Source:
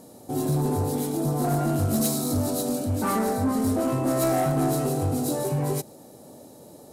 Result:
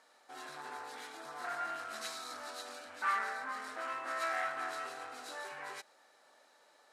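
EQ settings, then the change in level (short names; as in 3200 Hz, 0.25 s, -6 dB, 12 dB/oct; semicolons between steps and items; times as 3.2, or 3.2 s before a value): ladder band-pass 1900 Hz, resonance 45%; +9.0 dB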